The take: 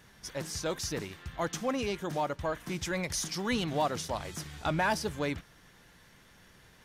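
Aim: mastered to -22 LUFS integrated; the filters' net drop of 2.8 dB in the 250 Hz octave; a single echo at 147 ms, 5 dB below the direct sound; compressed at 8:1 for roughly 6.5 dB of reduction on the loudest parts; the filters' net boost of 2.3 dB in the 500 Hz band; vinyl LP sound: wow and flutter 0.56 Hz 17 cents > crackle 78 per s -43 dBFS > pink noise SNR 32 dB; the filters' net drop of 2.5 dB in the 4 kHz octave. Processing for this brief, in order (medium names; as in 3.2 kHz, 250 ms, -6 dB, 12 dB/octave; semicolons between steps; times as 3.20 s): peaking EQ 250 Hz -5 dB; peaking EQ 500 Hz +4 dB; peaking EQ 4 kHz -3.5 dB; compression 8:1, threshold -30 dBFS; delay 147 ms -5 dB; wow and flutter 0.56 Hz 17 cents; crackle 78 per s -43 dBFS; pink noise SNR 32 dB; trim +13 dB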